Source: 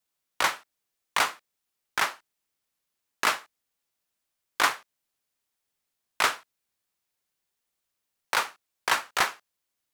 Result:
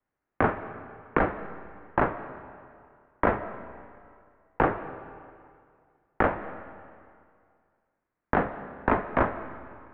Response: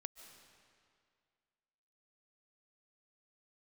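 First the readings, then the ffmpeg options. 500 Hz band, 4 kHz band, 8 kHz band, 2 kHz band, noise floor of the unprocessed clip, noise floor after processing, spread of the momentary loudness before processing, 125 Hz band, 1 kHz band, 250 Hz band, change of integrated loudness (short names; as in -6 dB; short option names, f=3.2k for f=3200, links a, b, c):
+11.0 dB, under -20 dB, under -40 dB, -4.5 dB, -83 dBFS, -85 dBFS, 10 LU, +20.0 dB, +1.0 dB, +17.0 dB, -1.5 dB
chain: -filter_complex "[0:a]highpass=f=280:t=q:w=0.5412,highpass=f=280:t=q:w=1.307,lowpass=f=2.5k:t=q:w=0.5176,lowpass=f=2.5k:t=q:w=0.7071,lowpass=f=2.5k:t=q:w=1.932,afreqshift=-300,acompressor=threshold=-26dB:ratio=4,afreqshift=-390,bandreject=f=102.9:t=h:w=4,bandreject=f=205.8:t=h:w=4,bandreject=f=308.7:t=h:w=4,bandreject=f=411.6:t=h:w=4,bandreject=f=514.5:t=h:w=4,bandreject=f=617.4:t=h:w=4,bandreject=f=720.3:t=h:w=4,bandreject=f=823.2:t=h:w=4,bandreject=f=926.1:t=h:w=4,bandreject=f=1.029k:t=h:w=4,bandreject=f=1.1319k:t=h:w=4,bandreject=f=1.2348k:t=h:w=4,bandreject=f=1.3377k:t=h:w=4,bandreject=f=1.4406k:t=h:w=4,bandreject=f=1.5435k:t=h:w=4,bandreject=f=1.6464k:t=h:w=4,bandreject=f=1.7493k:t=h:w=4,bandreject=f=1.8522k:t=h:w=4,bandreject=f=1.9551k:t=h:w=4,bandreject=f=2.058k:t=h:w=4,bandreject=f=2.1609k:t=h:w=4,bandreject=f=2.2638k:t=h:w=4,bandreject=f=2.3667k:t=h:w=4,bandreject=f=2.4696k:t=h:w=4,bandreject=f=2.5725k:t=h:w=4,bandreject=f=2.6754k:t=h:w=4,bandreject=f=2.7783k:t=h:w=4,bandreject=f=2.8812k:t=h:w=4,bandreject=f=2.9841k:t=h:w=4,bandreject=f=3.087k:t=h:w=4,bandreject=f=3.1899k:t=h:w=4,bandreject=f=3.2928k:t=h:w=4,bandreject=f=3.3957k:t=h:w=4,bandreject=f=3.4986k:t=h:w=4,bandreject=f=3.6015k:t=h:w=4,bandreject=f=3.7044k:t=h:w=4,bandreject=f=3.8073k:t=h:w=4,bandreject=f=3.9102k:t=h:w=4,bandreject=f=4.0131k:t=h:w=4,bandreject=f=4.116k:t=h:w=4,asplit=2[a][b];[1:a]atrim=start_sample=2205,highshelf=f=7.8k:g=-9[c];[b][c]afir=irnorm=-1:irlink=0,volume=7.5dB[d];[a][d]amix=inputs=2:normalize=0"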